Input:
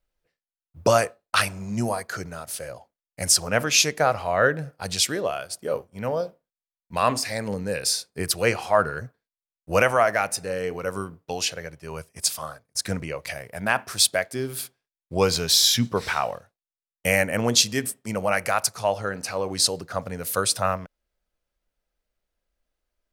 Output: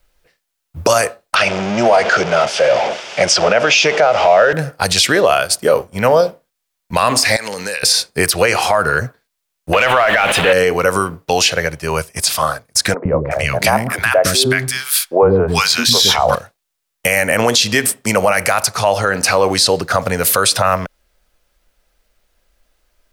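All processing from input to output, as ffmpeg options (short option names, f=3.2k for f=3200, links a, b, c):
-filter_complex "[0:a]asettb=1/sr,asplit=3[a][b][c];[a]atrim=end=1.354[d];[b]atrim=start=1.35:end=4.53,asetpts=PTS-STARTPTS,afade=t=in:d=0.004:c=qsin,afade=t=out:st=3.176:d=0.004:c=qsin,aeval=exprs='val(0)+0.5*0.0355*sgn(val(0))':c=same,highpass=240,equalizer=f=270:t=q:w=4:g=-9,equalizer=f=620:t=q:w=4:g=5,equalizer=f=1.1k:t=q:w=4:g=-6,equalizer=f=1.8k:t=q:w=4:g=-5,equalizer=f=4.1k:t=q:w=4:g=-10,lowpass=f=4.8k:w=0.5412,lowpass=f=4.8k:w=1.3066[e];[c]atrim=start=4.526[f];[d][e]acrossfade=d=0.004:c1=hsin:c2=qsin[g];[g][f]acrossfade=d=0.004:c1=qsin:c2=hsin,asettb=1/sr,asplit=3[h][i][j];[h]atrim=end=7.364[k];[i]atrim=start=7.36:end=7.83,asetpts=PTS-STARTPTS,afade=t=in:d=0.004:c=qsin,afade=t=out:st=0.466:d=0.004:c=qsin,highpass=f=1k:p=1,equalizer=f=4.2k:t=o:w=2.9:g=6.5,acompressor=threshold=-36dB:ratio=16:attack=3.2:release=140:knee=1:detection=peak[l];[j]atrim=start=7.826[m];[k][l]acrossfade=d=0.004:c1=hsin:c2=qsin[n];[n][m]acrossfade=d=0.004:c1=qsin:c2=hsin,asettb=1/sr,asplit=3[o][p][q];[o]atrim=end=9.734[r];[p]atrim=start=9.73:end=10.53,asetpts=PTS-STARTPTS,afade=t=in:d=0.004:c=qsin,afade=t=out:st=0.796:d=0.004:c=qsin,aeval=exprs='val(0)+0.5*0.0473*sgn(val(0))':c=same,highshelf=f=4.1k:t=q:w=3:g=-10,asplit=2[s][t];[t]highpass=f=720:p=1,volume=9dB,asoftclip=type=tanh:threshold=-2.5dB[u];[s][u]amix=inputs=2:normalize=0,lowpass=f=2.6k:p=1,volume=-6dB[v];[q]atrim=start=10.526[w];[r][v]acrossfade=d=0.004:c1=hsin:c2=qsin[x];[x][w]acrossfade=d=0.004:c1=qsin:c2=hsin,asettb=1/sr,asplit=3[y][z][aa];[y]atrim=end=12.944[ab];[z]atrim=start=12.94:end=16.35,asetpts=PTS-STARTPTS,afade=t=in:d=0.004:c=qsin,afade=t=out:st=3.406:d=0.004:c=qsin,lowshelf=f=390:g=9.5,acrossover=split=360|1100[ac][ad][ae];[ac]adelay=110[af];[ae]adelay=370[ag];[af][ad][ag]amix=inputs=3:normalize=0,atrim=end_sample=150381[ah];[aa]atrim=start=16.346[ai];[ab][ah]acrossfade=d=0.004:c1=hsin:c2=qsin[aj];[aj][ai]acrossfade=d=0.004:c1=qsin:c2=hsin,equalizer=f=180:w=0.3:g=-4.5,acrossover=split=390|4300[ak][al][am];[ak]acompressor=threshold=-39dB:ratio=4[an];[al]acompressor=threshold=-24dB:ratio=4[ao];[am]acompressor=threshold=-33dB:ratio=4[ap];[an][ao][ap]amix=inputs=3:normalize=0,alimiter=level_in=21.5dB:limit=-1dB:release=50:level=0:latency=1,volume=-1.5dB"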